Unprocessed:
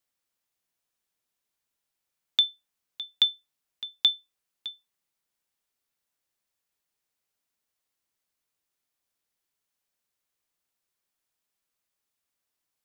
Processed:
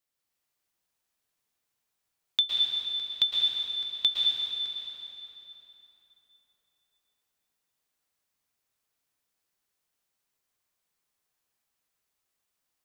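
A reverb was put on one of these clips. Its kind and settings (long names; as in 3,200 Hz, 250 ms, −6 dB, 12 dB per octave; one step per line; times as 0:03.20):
dense smooth reverb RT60 3.6 s, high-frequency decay 0.75×, pre-delay 100 ms, DRR −4.5 dB
level −3 dB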